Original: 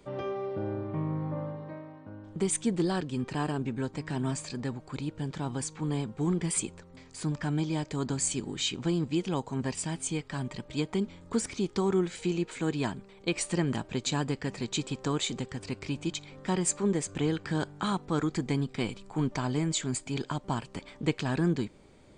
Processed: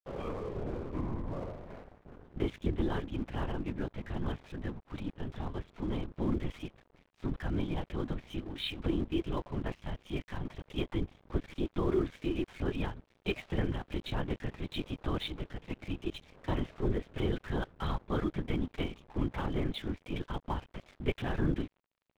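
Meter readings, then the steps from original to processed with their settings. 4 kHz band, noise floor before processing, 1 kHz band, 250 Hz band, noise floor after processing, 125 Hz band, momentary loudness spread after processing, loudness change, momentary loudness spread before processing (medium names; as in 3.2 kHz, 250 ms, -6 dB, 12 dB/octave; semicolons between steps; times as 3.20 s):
-6.5 dB, -54 dBFS, -5.0 dB, -5.0 dB, -74 dBFS, -4.5 dB, 8 LU, -5.0 dB, 8 LU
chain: LPC vocoder at 8 kHz whisper; crossover distortion -49.5 dBFS; trim -2.5 dB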